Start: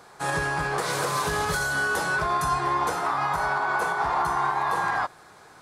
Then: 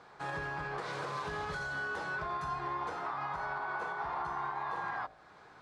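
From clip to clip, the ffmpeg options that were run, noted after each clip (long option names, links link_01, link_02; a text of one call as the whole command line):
ffmpeg -i in.wav -af "lowpass=3800,bandreject=frequency=54.81:width_type=h:width=4,bandreject=frequency=109.62:width_type=h:width=4,bandreject=frequency=164.43:width_type=h:width=4,bandreject=frequency=219.24:width_type=h:width=4,bandreject=frequency=274.05:width_type=h:width=4,bandreject=frequency=328.86:width_type=h:width=4,bandreject=frequency=383.67:width_type=h:width=4,bandreject=frequency=438.48:width_type=h:width=4,bandreject=frequency=493.29:width_type=h:width=4,bandreject=frequency=548.1:width_type=h:width=4,bandreject=frequency=602.91:width_type=h:width=4,bandreject=frequency=657.72:width_type=h:width=4,bandreject=frequency=712.53:width_type=h:width=4,bandreject=frequency=767.34:width_type=h:width=4,acompressor=threshold=-40dB:ratio=1.5,volume=-5.5dB" out.wav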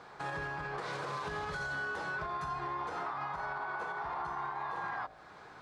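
ffmpeg -i in.wav -af "alimiter=level_in=9.5dB:limit=-24dB:level=0:latency=1:release=129,volume=-9.5dB,volume=4dB" out.wav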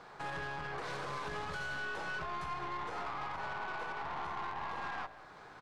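ffmpeg -i in.wav -af "aeval=exprs='(tanh(70.8*val(0)+0.6)-tanh(0.6))/70.8':channel_layout=same,aecho=1:1:190:0.15,volume=2dB" out.wav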